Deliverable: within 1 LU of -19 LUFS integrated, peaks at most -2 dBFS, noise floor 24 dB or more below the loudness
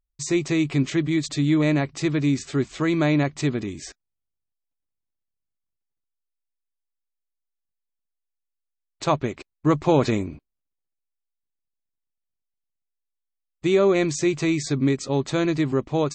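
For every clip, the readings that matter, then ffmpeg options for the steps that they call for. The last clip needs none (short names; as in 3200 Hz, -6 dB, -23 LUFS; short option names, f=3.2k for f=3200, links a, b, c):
loudness -23.0 LUFS; peak -7.0 dBFS; loudness target -19.0 LUFS
-> -af "volume=4dB"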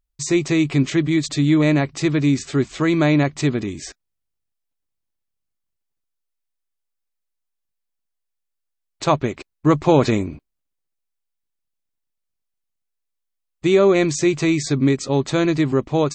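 loudness -19.0 LUFS; peak -3.0 dBFS; noise floor -78 dBFS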